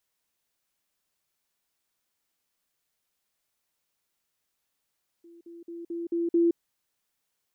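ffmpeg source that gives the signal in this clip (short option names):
-f lavfi -i "aevalsrc='pow(10,(-48.5+6*floor(t/0.22))/20)*sin(2*PI*339*t)*clip(min(mod(t,0.22),0.17-mod(t,0.22))/0.005,0,1)':d=1.32:s=44100"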